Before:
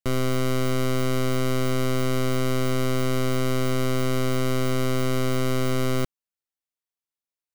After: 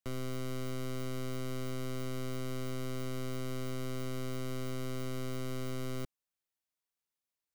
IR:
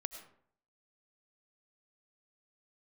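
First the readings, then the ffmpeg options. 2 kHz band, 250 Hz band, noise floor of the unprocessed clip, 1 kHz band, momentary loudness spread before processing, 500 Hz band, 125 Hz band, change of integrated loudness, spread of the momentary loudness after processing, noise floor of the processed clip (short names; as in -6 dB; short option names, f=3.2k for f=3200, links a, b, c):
-15.5 dB, -14.0 dB, under -85 dBFS, -16.0 dB, 0 LU, -15.0 dB, -13.5 dB, -14.5 dB, 0 LU, under -85 dBFS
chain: -filter_complex "[0:a]aeval=exprs='(mod(31.6*val(0)+1,2)-1)/31.6':c=same,acrossover=split=410|3000[a][b][c];[b]acompressor=threshold=-43dB:ratio=6[d];[a][d][c]amix=inputs=3:normalize=0"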